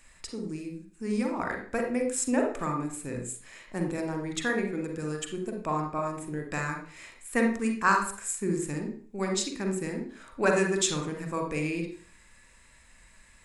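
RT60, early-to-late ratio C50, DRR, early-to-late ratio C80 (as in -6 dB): 0.50 s, 5.5 dB, 3.0 dB, 10.5 dB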